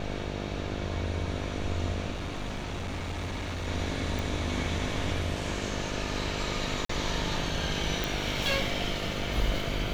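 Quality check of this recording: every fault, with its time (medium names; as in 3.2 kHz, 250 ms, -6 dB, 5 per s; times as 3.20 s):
buzz 50 Hz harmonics 14 -36 dBFS
2.10–3.68 s: clipped -30.5 dBFS
4.19 s: pop
6.85–6.89 s: dropout 44 ms
8.04 s: pop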